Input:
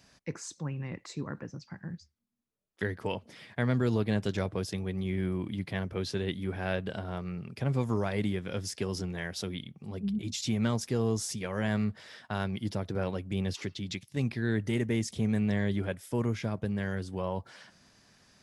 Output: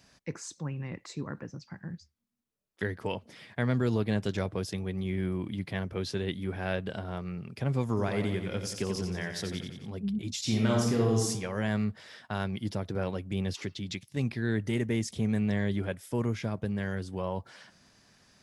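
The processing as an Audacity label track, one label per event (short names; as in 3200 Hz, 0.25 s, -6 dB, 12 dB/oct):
7.880000	9.900000	feedback echo 89 ms, feedback 58%, level -7.5 dB
10.410000	11.280000	reverb throw, RT60 0.83 s, DRR -2 dB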